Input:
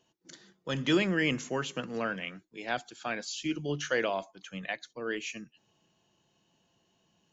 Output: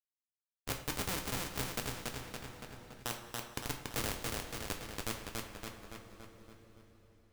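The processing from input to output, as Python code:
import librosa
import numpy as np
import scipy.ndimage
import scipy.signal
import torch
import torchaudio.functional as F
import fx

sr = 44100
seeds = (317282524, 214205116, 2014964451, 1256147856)

p1 = scipy.signal.sosfilt(scipy.signal.butter(4, 78.0, 'highpass', fs=sr, output='sos'), x)
p2 = fx.high_shelf(p1, sr, hz=4900.0, db=-5.0)
p3 = fx.env_lowpass_down(p2, sr, base_hz=770.0, full_db=-30.0)
p4 = fx.step_gate(p3, sr, bpm=182, pattern='.x.xx..xx', floor_db=-60.0, edge_ms=4.5)
p5 = fx.schmitt(p4, sr, flips_db=-28.0)
p6 = p5 + fx.echo_feedback(p5, sr, ms=283, feedback_pct=45, wet_db=-4.5, dry=0)
p7 = fx.rev_double_slope(p6, sr, seeds[0], early_s=0.27, late_s=4.5, knee_db=-22, drr_db=4.0)
p8 = fx.spectral_comp(p7, sr, ratio=2.0)
y = p8 * 10.0 ** (11.5 / 20.0)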